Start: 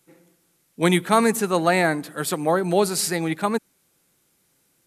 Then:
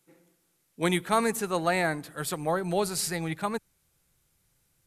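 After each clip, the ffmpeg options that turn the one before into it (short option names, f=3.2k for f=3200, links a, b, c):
-af "asubboost=boost=11:cutoff=84,volume=-6dB"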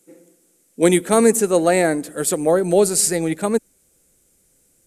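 -af "equalizer=f=125:t=o:w=1:g=-7,equalizer=f=250:t=o:w=1:g=9,equalizer=f=500:t=o:w=1:g=9,equalizer=f=1k:t=o:w=1:g=-6,equalizer=f=4k:t=o:w=1:g=-4,equalizer=f=8k:t=o:w=1:g=11,volume=5.5dB"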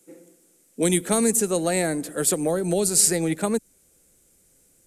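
-filter_complex "[0:a]acrossover=split=190|3000[a][b][c];[b]acompressor=threshold=-22dB:ratio=6[d];[a][d][c]amix=inputs=3:normalize=0"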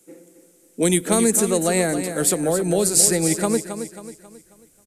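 -af "aecho=1:1:270|540|810|1080|1350:0.335|0.141|0.0591|0.0248|0.0104,volume=2.5dB"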